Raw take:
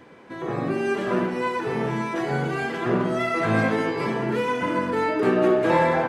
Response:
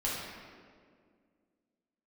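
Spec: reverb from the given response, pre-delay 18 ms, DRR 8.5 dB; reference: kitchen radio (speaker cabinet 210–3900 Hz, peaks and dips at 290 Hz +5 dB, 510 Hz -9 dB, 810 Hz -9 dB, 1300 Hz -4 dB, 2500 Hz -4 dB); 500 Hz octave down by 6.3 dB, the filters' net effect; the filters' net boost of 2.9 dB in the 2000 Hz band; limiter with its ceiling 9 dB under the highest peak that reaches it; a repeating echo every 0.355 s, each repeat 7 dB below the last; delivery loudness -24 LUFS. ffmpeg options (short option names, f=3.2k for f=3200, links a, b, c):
-filter_complex "[0:a]equalizer=f=500:t=o:g=-4.5,equalizer=f=2k:t=o:g=6,alimiter=limit=-16.5dB:level=0:latency=1,aecho=1:1:355|710|1065|1420|1775:0.447|0.201|0.0905|0.0407|0.0183,asplit=2[a][b];[1:a]atrim=start_sample=2205,adelay=18[c];[b][c]afir=irnorm=-1:irlink=0,volume=-15dB[d];[a][d]amix=inputs=2:normalize=0,highpass=210,equalizer=f=290:t=q:w=4:g=5,equalizer=f=510:t=q:w=4:g=-9,equalizer=f=810:t=q:w=4:g=-9,equalizer=f=1.3k:t=q:w=4:g=-4,equalizer=f=2.5k:t=q:w=4:g=-4,lowpass=f=3.9k:w=0.5412,lowpass=f=3.9k:w=1.3066,volume=2.5dB"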